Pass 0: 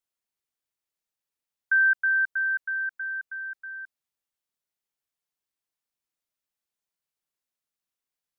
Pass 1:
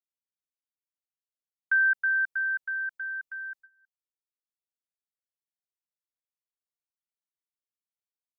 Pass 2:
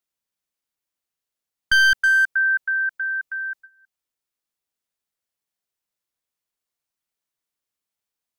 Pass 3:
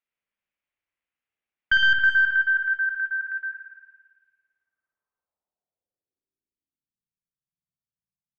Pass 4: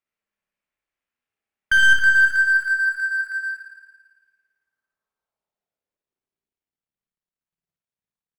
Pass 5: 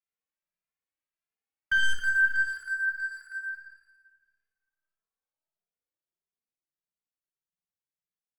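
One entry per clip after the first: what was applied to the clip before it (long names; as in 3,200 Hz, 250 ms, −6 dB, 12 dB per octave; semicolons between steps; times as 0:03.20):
noise gate with hold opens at −34 dBFS; parametric band 1,500 Hz −6 dB 1 octave; transient designer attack +1 dB, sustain −7 dB; level +3.5 dB
wavefolder on the positive side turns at −22.5 dBFS; level +9 dB
time-frequency box erased 0:03.51–0:03.92, 200–1,600 Hz; low-pass filter sweep 2,400 Hz → 160 Hz, 0:04.23–0:07.09; spring reverb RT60 1.5 s, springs 54 ms, chirp 75 ms, DRR −0.5 dB; level −5.5 dB
running median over 9 samples; on a send: ambience of single reflections 30 ms −7.5 dB, 59 ms −7 dB; on the sum: level +2 dB
rectangular room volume 2,700 cubic metres, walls mixed, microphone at 0.58 metres; barber-pole flanger 2.5 ms +1.6 Hz; level −7.5 dB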